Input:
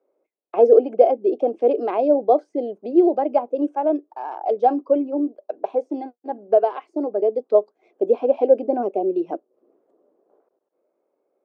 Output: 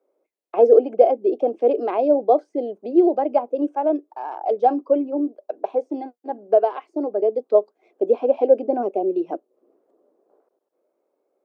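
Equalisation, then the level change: high-pass 170 Hz; 0.0 dB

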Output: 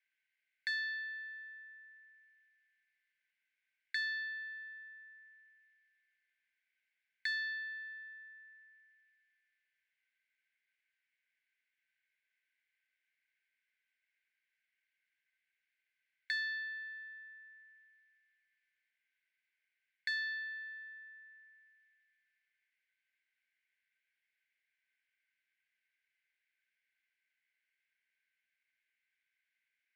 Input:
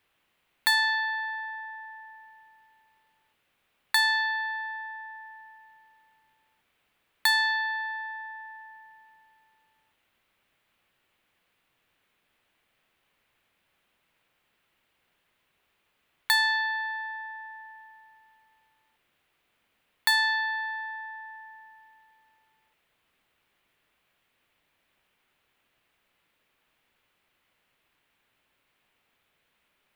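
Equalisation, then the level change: rippled Chebyshev high-pass 1.5 kHz, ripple 9 dB; tape spacing loss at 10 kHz 35 dB; +3.0 dB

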